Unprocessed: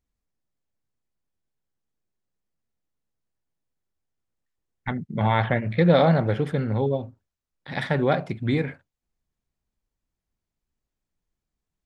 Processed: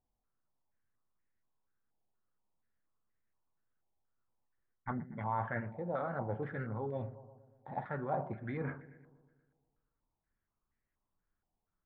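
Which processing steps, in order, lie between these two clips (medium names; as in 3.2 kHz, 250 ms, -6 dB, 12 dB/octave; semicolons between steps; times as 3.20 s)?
reverse; compression 10:1, threshold -32 dBFS, peak gain reduction 19.5 dB; reverse; feedback echo behind a low-pass 119 ms, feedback 60%, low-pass 980 Hz, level -15 dB; flange 0.22 Hz, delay 8 ms, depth 1.9 ms, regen -63%; step-sequenced low-pass 4.2 Hz 830–1900 Hz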